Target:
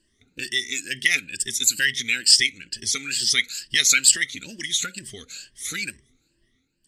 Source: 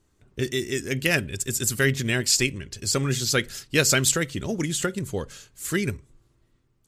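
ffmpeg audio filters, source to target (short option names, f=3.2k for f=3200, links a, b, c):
-filter_complex "[0:a]afftfilt=real='re*pow(10,16/40*sin(2*PI*(1.3*log(max(b,1)*sr/1024/100)/log(2)-(2.2)*(pts-256)/sr)))':imag='im*pow(10,16/40*sin(2*PI*(1.3*log(max(b,1)*sr/1024/100)/log(2)-(2.2)*(pts-256)/sr)))':win_size=1024:overlap=0.75,equalizer=f=125:t=o:w=1:g=-4,equalizer=f=250:t=o:w=1:g=9,equalizer=f=1k:t=o:w=1:g=-9,equalizer=f=2k:t=o:w=1:g=11,equalizer=f=4k:t=o:w=1:g=11,equalizer=f=8k:t=o:w=1:g=8,acrossover=split=1300[a][b];[a]acompressor=threshold=-31dB:ratio=6[c];[c][b]amix=inputs=2:normalize=0,volume=-8.5dB"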